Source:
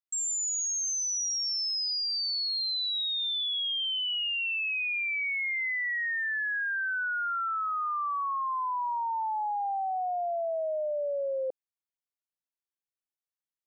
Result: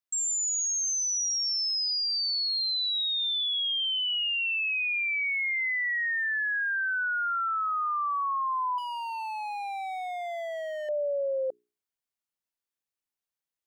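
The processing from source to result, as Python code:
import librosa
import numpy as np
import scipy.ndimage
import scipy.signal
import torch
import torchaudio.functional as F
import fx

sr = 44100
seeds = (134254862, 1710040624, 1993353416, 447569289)

y = fx.hum_notches(x, sr, base_hz=60, count=7)
y = fx.overload_stage(y, sr, gain_db=35.5, at=(8.78, 10.89))
y = F.gain(torch.from_numpy(y), 2.0).numpy()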